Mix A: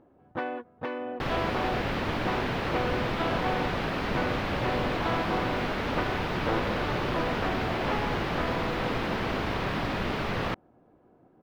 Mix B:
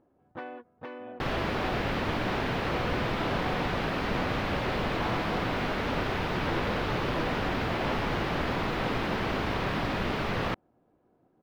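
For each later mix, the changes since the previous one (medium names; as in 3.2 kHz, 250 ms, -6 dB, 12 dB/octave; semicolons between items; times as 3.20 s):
first sound -7.5 dB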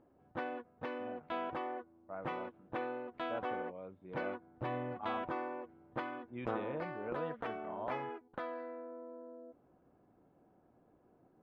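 speech: add distance through air 450 m; second sound: muted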